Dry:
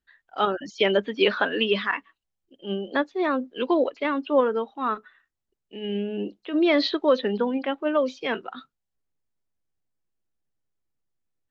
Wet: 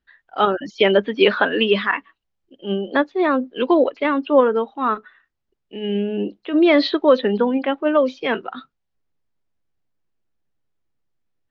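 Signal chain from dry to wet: distance through air 130 m; trim +6.5 dB

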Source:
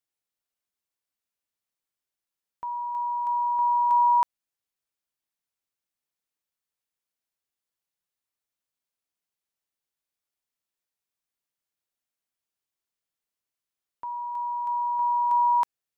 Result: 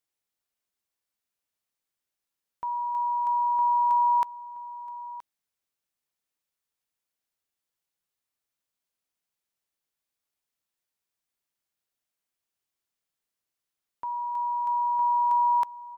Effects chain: compression 4:1, threshold -23 dBFS, peak gain reduction 4.5 dB; on a send: delay 973 ms -16 dB; on the sum: trim +1.5 dB

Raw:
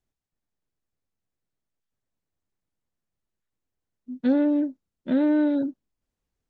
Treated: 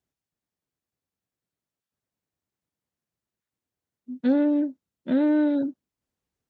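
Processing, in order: high-pass 80 Hz 12 dB/octave

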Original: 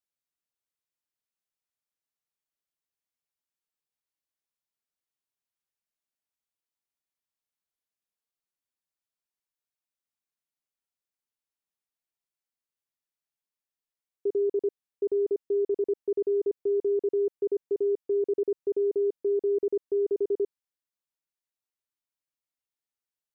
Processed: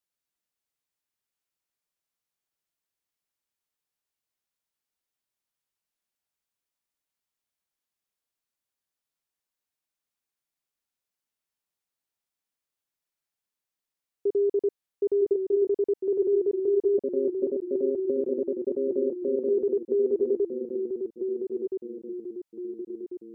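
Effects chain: 16.98–19.49 s: AM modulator 140 Hz, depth 75%; ever faster or slower copies 109 ms, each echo -1 st, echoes 3, each echo -6 dB; trim +2 dB

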